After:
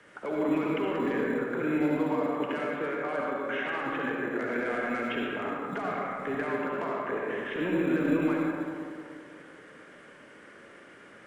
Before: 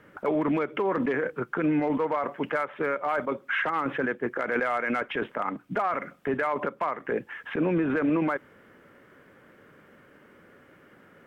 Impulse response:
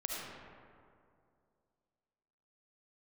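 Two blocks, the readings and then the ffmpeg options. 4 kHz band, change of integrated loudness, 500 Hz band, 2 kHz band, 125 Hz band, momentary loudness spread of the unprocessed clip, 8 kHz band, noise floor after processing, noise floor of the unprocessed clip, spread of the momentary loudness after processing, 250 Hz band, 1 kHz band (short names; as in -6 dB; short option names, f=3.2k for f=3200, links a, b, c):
+0.5 dB, -2.0 dB, -2.0 dB, -2.5 dB, -2.5 dB, 6 LU, n/a, -52 dBFS, -57 dBFS, 14 LU, -0.5 dB, -4.5 dB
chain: -filter_complex "[0:a]highshelf=f=2.3k:g=10,acrossover=split=350[a][b];[b]acompressor=threshold=-37dB:ratio=2.5[c];[a][c]amix=inputs=2:normalize=0,bass=f=250:g=-6,treble=f=4k:g=1,bandreject=f=1.3k:w=26,aresample=22050,aresample=44100[d];[1:a]atrim=start_sample=2205[e];[d][e]afir=irnorm=-1:irlink=0,acrossover=split=180|490[f][g][h];[f]acrusher=samples=12:mix=1:aa=0.000001[i];[i][g][h]amix=inputs=3:normalize=0"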